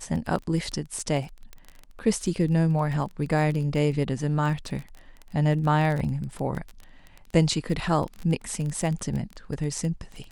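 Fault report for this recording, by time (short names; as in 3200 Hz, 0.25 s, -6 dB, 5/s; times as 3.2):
crackle 22/s -30 dBFS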